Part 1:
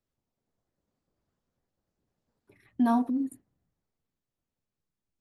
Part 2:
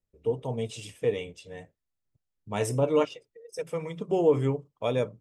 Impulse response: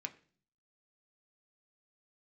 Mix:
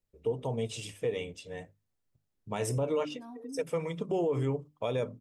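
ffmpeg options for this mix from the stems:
-filter_complex "[0:a]acompressor=threshold=0.0447:ratio=4,adelay=350,volume=0.266,asplit=2[s0][s1];[s1]volume=0.398[s2];[1:a]bandreject=f=50:t=h:w=6,bandreject=f=100:t=h:w=6,bandreject=f=150:t=h:w=6,bandreject=f=200:t=h:w=6,bandreject=f=250:t=h:w=6,bandreject=f=300:t=h:w=6,volume=1.12,asplit=2[s3][s4];[s4]apad=whole_len=245167[s5];[s0][s5]sidechaincompress=threshold=0.00794:ratio=3:attack=16:release=419[s6];[2:a]atrim=start_sample=2205[s7];[s2][s7]afir=irnorm=-1:irlink=0[s8];[s6][s3][s8]amix=inputs=3:normalize=0,alimiter=limit=0.0794:level=0:latency=1:release=119"

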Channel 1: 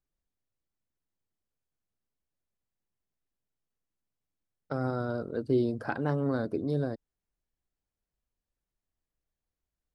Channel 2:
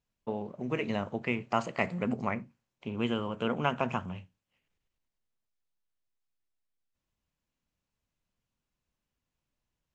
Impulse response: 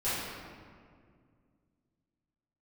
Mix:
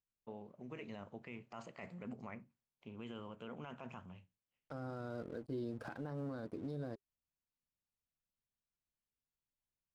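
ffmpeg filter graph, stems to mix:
-filter_complex "[0:a]aeval=exprs='sgn(val(0))*max(abs(val(0))-0.00266,0)':c=same,bandreject=f=400:w=12,volume=0.708[s0];[1:a]alimiter=limit=0.0794:level=0:latency=1:release=19,volume=0.188[s1];[s0][s1]amix=inputs=2:normalize=0,alimiter=level_in=3.16:limit=0.0631:level=0:latency=1:release=237,volume=0.316"

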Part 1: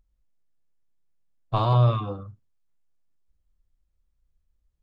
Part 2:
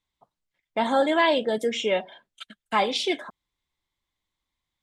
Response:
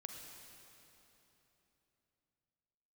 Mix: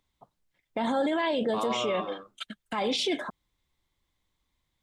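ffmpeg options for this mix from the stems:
-filter_complex "[0:a]highpass=f=290:w=0.5412,highpass=f=290:w=1.3066,volume=1[s0];[1:a]lowshelf=f=370:g=6.5,alimiter=limit=0.126:level=0:latency=1:release=58,volume=1.33[s1];[s0][s1]amix=inputs=2:normalize=0,alimiter=limit=0.1:level=0:latency=1:release=23"

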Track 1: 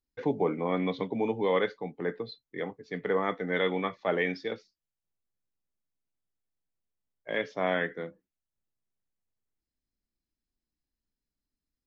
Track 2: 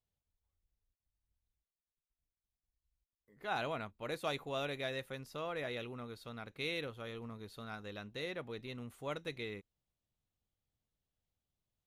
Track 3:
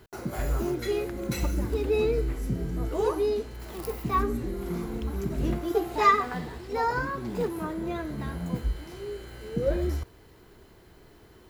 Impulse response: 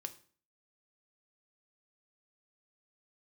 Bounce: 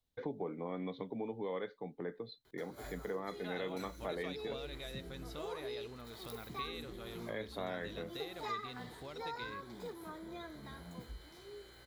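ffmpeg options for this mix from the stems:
-filter_complex "[0:a]highshelf=f=2400:g=-11.5,volume=0.891[s0];[1:a]acompressor=threshold=0.00398:ratio=5,volume=1.12[s1];[2:a]lowshelf=f=370:g=-9,adelay=2450,volume=0.299[s2];[s0][s2]amix=inputs=2:normalize=0,asuperstop=centerf=2700:order=4:qfactor=7.7,acompressor=threshold=0.00794:ratio=2.5,volume=1[s3];[s1][s3]amix=inputs=2:normalize=0,equalizer=f=3800:t=o:w=0.36:g=8"

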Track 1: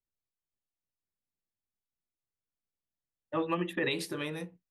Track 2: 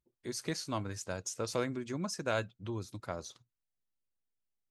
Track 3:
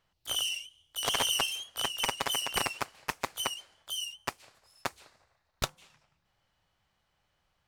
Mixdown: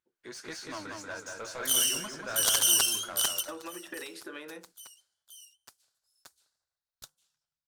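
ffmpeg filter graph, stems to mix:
-filter_complex "[0:a]highpass=f=270:w=0.5412,highpass=f=270:w=1.3066,acompressor=threshold=0.0112:ratio=6,adelay=150,volume=0.891[s0];[1:a]flanger=delay=8.2:depth=6.4:regen=67:speed=1.7:shape=triangular,asplit=2[s1][s2];[s2]highpass=f=720:p=1,volume=17.8,asoftclip=type=tanh:threshold=0.106[s3];[s1][s3]amix=inputs=2:normalize=0,lowpass=f=4100:p=1,volume=0.501,volume=0.282,asplit=3[s4][s5][s6];[s5]volume=0.668[s7];[2:a]aexciter=amount=3.7:drive=8:freq=3400,adelay=1400,volume=0.562[s8];[s6]apad=whole_len=400300[s9];[s8][s9]sidechaingate=range=0.0794:threshold=0.00112:ratio=16:detection=peak[s10];[s7]aecho=0:1:186|372|558|744|930|1116|1302:1|0.5|0.25|0.125|0.0625|0.0312|0.0156[s11];[s0][s4][s10][s11]amix=inputs=4:normalize=0,equalizer=f=1500:w=4.3:g=8.5"

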